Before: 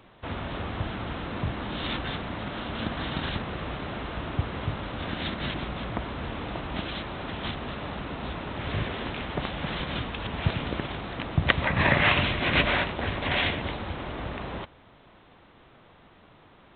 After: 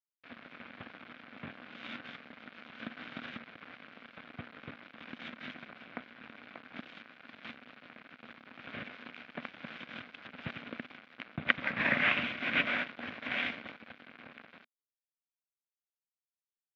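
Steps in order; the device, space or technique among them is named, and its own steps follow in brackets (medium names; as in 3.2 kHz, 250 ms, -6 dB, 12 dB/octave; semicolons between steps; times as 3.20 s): blown loudspeaker (crossover distortion -31.5 dBFS; cabinet simulation 210–3800 Hz, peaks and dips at 240 Hz +9 dB, 380 Hz -7 dB, 910 Hz -6 dB, 1.5 kHz +7 dB, 2.3 kHz +7 dB); trim -7.5 dB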